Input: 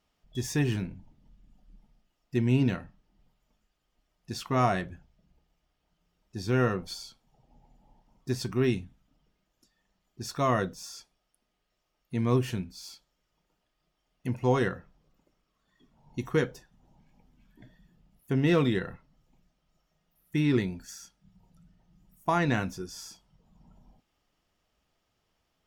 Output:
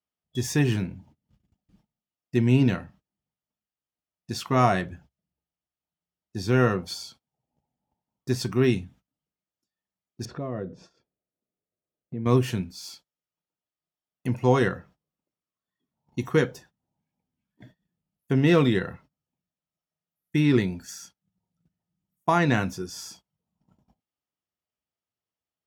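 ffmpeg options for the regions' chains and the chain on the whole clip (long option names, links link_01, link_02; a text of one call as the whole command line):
ffmpeg -i in.wav -filter_complex "[0:a]asettb=1/sr,asplit=3[link_01][link_02][link_03];[link_01]atrim=end=10.254[link_04];[link_02]atrim=start=10.25:end=12.26,asetpts=PTS-STARTPTS,afade=type=in:duration=0.004:curve=qsin,afade=type=out:start_time=2.006:duration=0.004:curve=qsin,lowpass=2100,lowshelf=frequency=680:width_type=q:width=1.5:gain=8.5,acompressor=threshold=-42dB:ratio=2.5:attack=3.2:release=140:knee=1:detection=peak[link_05];[link_03]atrim=start=12.256[link_06];[link_04][link_05]acrossfade=duration=0.004:curve1=hsin:curve2=qsin[link_07];[link_07][link_06]acrossfade=duration=0.004:curve1=qsin:curve2=hsin,agate=range=-23dB:threshold=-54dB:ratio=16:detection=peak,highpass=frequency=68:width=0.5412,highpass=frequency=68:width=1.3066,volume=4.5dB" out.wav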